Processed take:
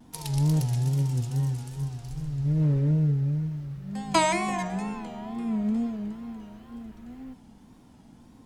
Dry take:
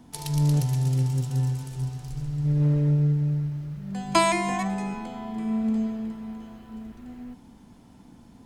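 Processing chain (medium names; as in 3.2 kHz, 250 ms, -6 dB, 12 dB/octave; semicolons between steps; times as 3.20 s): wow and flutter 110 cents; de-hum 91.11 Hz, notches 29; trim -1.5 dB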